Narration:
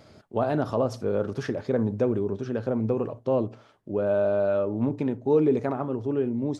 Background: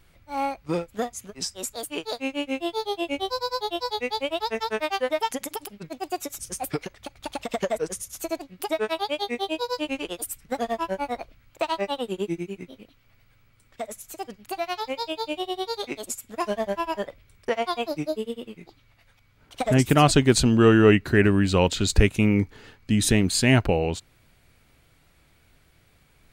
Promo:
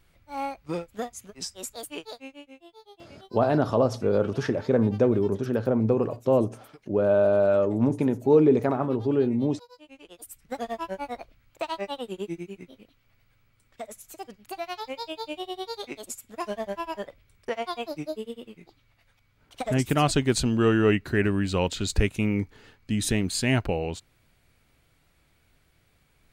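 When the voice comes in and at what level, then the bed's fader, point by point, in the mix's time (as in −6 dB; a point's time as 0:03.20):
3.00 s, +3.0 dB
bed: 0:01.93 −4.5 dB
0:02.61 −22.5 dB
0:09.83 −22.5 dB
0:10.52 −5 dB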